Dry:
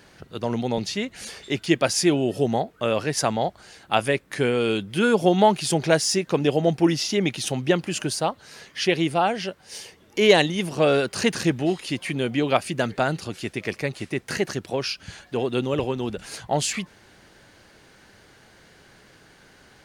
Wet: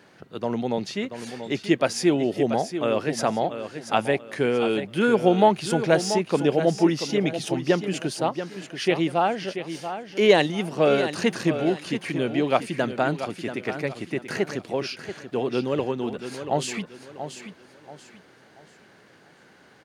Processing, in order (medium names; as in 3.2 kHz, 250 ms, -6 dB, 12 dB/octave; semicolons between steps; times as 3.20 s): high-pass 150 Hz; treble shelf 3.2 kHz -8.5 dB; feedback delay 684 ms, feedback 32%, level -10 dB